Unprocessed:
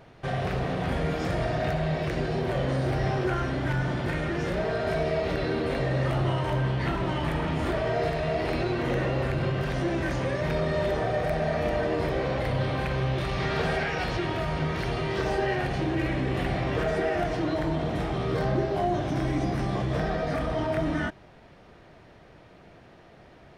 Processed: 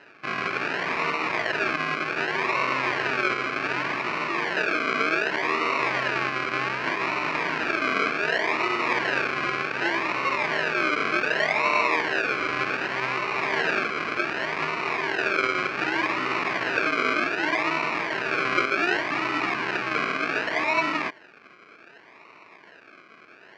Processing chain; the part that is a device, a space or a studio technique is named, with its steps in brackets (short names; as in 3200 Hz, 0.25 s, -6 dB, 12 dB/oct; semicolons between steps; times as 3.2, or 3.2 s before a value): circuit-bent sampling toy (decimation with a swept rate 38×, swing 60% 0.66 Hz; speaker cabinet 520–4400 Hz, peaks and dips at 530 Hz -9 dB, 760 Hz -7 dB, 1100 Hz +5 dB, 1600 Hz +5 dB, 2400 Hz +9 dB, 3500 Hz -9 dB); gain +7 dB